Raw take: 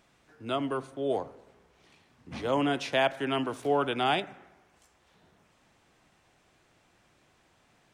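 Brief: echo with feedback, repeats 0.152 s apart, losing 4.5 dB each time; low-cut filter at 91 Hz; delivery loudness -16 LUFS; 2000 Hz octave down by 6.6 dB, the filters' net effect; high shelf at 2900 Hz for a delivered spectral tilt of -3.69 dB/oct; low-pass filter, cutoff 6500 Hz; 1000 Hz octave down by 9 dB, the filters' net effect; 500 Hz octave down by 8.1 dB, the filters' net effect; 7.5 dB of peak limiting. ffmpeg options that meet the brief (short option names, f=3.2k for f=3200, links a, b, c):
-af "highpass=91,lowpass=6.5k,equalizer=f=500:t=o:g=-8,equalizer=f=1k:t=o:g=-8,equalizer=f=2k:t=o:g=-7.5,highshelf=f=2.9k:g=4,alimiter=level_in=2dB:limit=-24dB:level=0:latency=1,volume=-2dB,aecho=1:1:152|304|456|608|760|912|1064|1216|1368:0.596|0.357|0.214|0.129|0.0772|0.0463|0.0278|0.0167|0.01,volume=20dB"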